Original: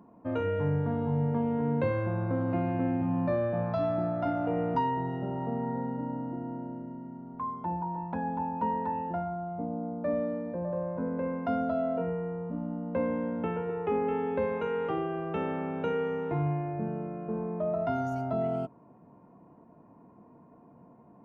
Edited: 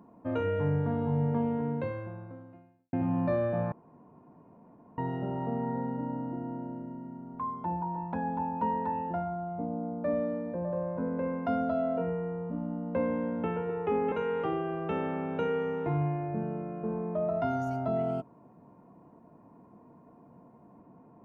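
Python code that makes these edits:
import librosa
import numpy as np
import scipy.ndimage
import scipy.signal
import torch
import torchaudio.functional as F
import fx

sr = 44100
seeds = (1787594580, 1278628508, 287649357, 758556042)

y = fx.edit(x, sr, fx.fade_out_span(start_s=1.43, length_s=1.5, curve='qua'),
    fx.room_tone_fill(start_s=3.72, length_s=1.26),
    fx.cut(start_s=14.12, length_s=0.45), tone=tone)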